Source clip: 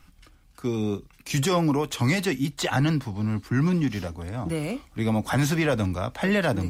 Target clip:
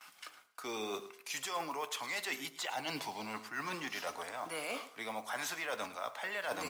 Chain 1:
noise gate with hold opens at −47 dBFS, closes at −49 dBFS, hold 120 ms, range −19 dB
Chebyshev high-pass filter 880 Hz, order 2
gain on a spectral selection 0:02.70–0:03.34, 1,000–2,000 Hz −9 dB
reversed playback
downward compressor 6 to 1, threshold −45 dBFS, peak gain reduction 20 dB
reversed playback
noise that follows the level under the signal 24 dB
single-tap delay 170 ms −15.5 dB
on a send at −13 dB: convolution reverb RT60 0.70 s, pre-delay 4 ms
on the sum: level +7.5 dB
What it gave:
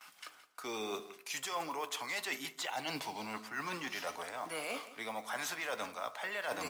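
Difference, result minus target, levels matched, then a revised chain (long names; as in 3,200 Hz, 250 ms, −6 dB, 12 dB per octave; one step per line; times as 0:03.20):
echo 61 ms late
noise gate with hold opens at −47 dBFS, closes at −49 dBFS, hold 120 ms, range −19 dB
Chebyshev high-pass filter 880 Hz, order 2
gain on a spectral selection 0:02.70–0:03.34, 1,000–2,000 Hz −9 dB
reversed playback
downward compressor 6 to 1, threshold −45 dBFS, peak gain reduction 20 dB
reversed playback
noise that follows the level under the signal 24 dB
single-tap delay 109 ms −15.5 dB
on a send at −13 dB: convolution reverb RT60 0.70 s, pre-delay 4 ms
on the sum: level +7.5 dB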